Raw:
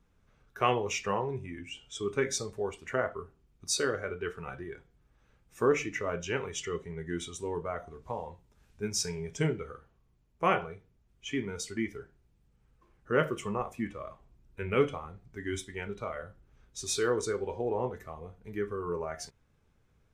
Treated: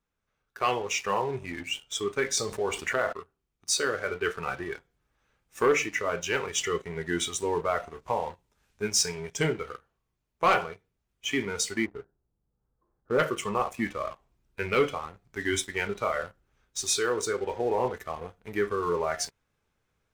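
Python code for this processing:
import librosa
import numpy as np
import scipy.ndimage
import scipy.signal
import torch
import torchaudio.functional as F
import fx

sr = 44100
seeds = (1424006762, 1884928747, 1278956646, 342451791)

y = fx.env_flatten(x, sr, amount_pct=50, at=(2.37, 3.13))
y = fx.gaussian_blur(y, sr, sigma=7.6, at=(11.84, 13.18), fade=0.02)
y = fx.low_shelf(y, sr, hz=380.0, db=-10.5)
y = fx.rider(y, sr, range_db=4, speed_s=0.5)
y = fx.leveller(y, sr, passes=2)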